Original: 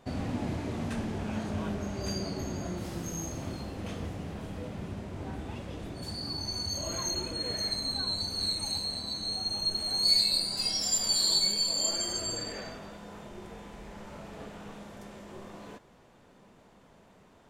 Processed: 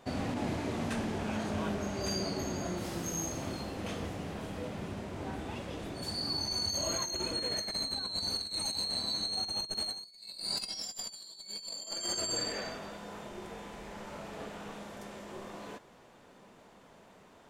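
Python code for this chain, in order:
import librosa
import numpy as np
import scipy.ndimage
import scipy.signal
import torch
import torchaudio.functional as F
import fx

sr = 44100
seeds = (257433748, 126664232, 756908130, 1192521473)

y = fx.low_shelf(x, sr, hz=190.0, db=-8.5)
y = fx.over_compress(y, sr, threshold_db=-35.0, ratio=-0.5)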